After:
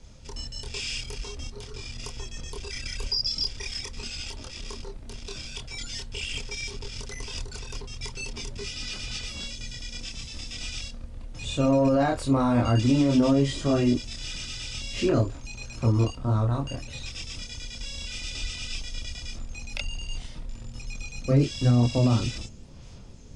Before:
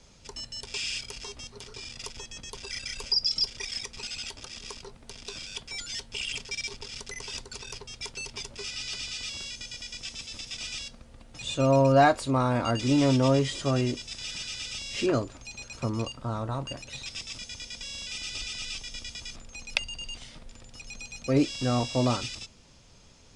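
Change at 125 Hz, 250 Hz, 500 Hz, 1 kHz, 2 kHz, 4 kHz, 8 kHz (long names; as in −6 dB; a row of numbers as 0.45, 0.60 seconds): +5.0, +3.5, −0.5, −3.5, −1.5, −1.0, −0.5 decibels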